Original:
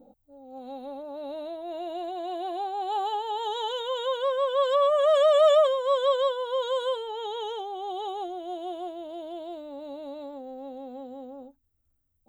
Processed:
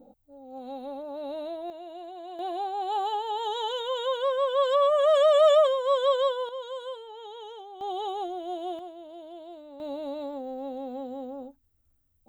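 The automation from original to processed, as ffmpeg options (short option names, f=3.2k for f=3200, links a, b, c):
-af "asetnsamples=n=441:p=0,asendcmd='1.7 volume volume -7.5dB;2.39 volume volume 0dB;6.49 volume volume -9dB;7.81 volume volume 1dB;8.79 volume volume -6dB;9.8 volume volume 4dB',volume=1dB"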